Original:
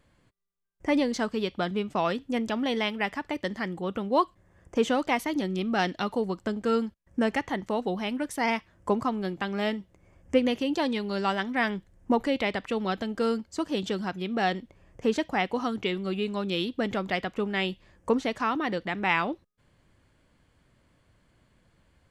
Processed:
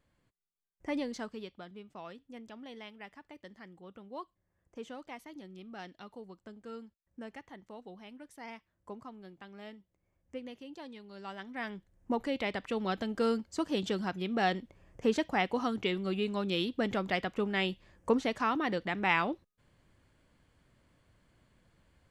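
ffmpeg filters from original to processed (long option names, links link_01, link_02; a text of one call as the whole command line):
ffmpeg -i in.wav -af "volume=6.5dB,afade=type=out:start_time=1.09:duration=0.55:silence=0.334965,afade=type=in:start_time=11.13:duration=0.58:silence=0.398107,afade=type=in:start_time=11.71:duration=1.48:silence=0.375837" out.wav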